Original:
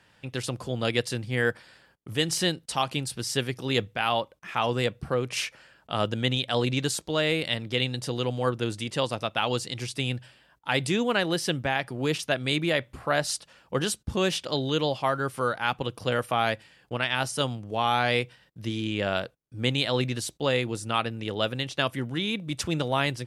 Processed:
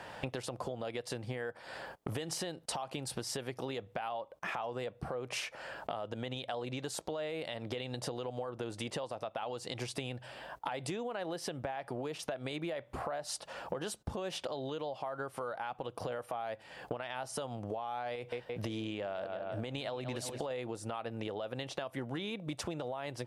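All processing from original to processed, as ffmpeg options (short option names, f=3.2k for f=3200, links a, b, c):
-filter_complex "[0:a]asettb=1/sr,asplit=3[a][b][c];[a]atrim=end=18.154[d];[b]atrim=start=18.15:end=20.51,asetpts=PTS-STARTPTS,afade=t=in:d=0.004:c=qsin,afade=t=out:st=2.356:d=0.004:c=qsin,asplit=2[e][f];[f]adelay=171,lowpass=f=4k:p=1,volume=-15dB,asplit=2[g][h];[h]adelay=171,lowpass=f=4k:p=1,volume=0.5,asplit=2[i][j];[j]adelay=171,lowpass=f=4k:p=1,volume=0.5,asplit=2[k][l];[l]adelay=171,lowpass=f=4k:p=1,volume=0.5,asplit=2[m][n];[n]adelay=171,lowpass=f=4k:p=1,volume=0.5[o];[e][g][i][k][m][o]amix=inputs=6:normalize=0,atrim=end_sample=104076,acompressor=threshold=-27dB:ratio=4:attack=3.2:release=140:knee=1:detection=peak[p];[c]atrim=start=20.506[q];[d][p]acrossfade=d=0.004:c1=hsin:c2=qsin[r];[r][q]acrossfade=d=0.004:c1=qsin:c2=hsin,equalizer=f=700:t=o:w=1.7:g=14,alimiter=limit=-19dB:level=0:latency=1:release=199,acompressor=threshold=-43dB:ratio=12,volume=7.5dB"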